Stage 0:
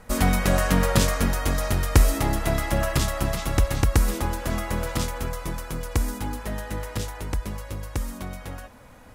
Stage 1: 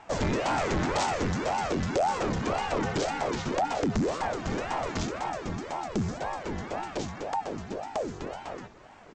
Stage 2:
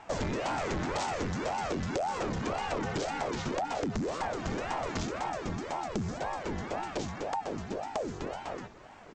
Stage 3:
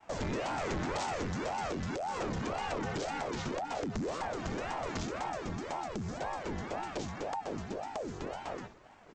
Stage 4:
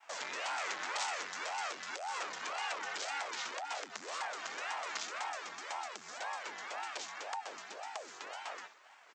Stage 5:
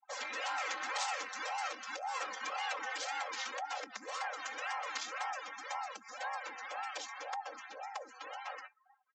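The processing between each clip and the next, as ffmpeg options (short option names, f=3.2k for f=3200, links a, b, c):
-af "aresample=16000,asoftclip=type=tanh:threshold=-19.5dB,aresample=44100,aeval=exprs='val(0)*sin(2*PI*490*n/s+490*0.75/1.9*sin(2*PI*1.9*n/s))':c=same"
-af "acompressor=threshold=-29dB:ratio=6"
-af "agate=range=-33dB:threshold=-46dB:ratio=3:detection=peak,alimiter=level_in=0.5dB:limit=-24dB:level=0:latency=1:release=227,volume=-0.5dB,volume=-1.5dB"
-af "highpass=1.2k,volume=3.5dB"
-af "aecho=1:1:3.8:0.88,afftdn=nr=35:nf=-46,volume=-1.5dB"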